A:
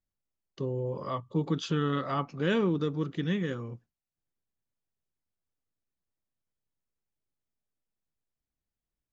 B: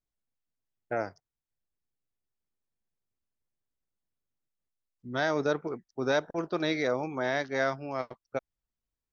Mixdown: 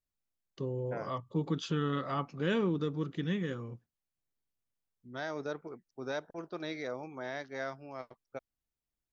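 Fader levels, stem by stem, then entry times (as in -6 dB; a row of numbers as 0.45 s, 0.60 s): -3.5 dB, -10.0 dB; 0.00 s, 0.00 s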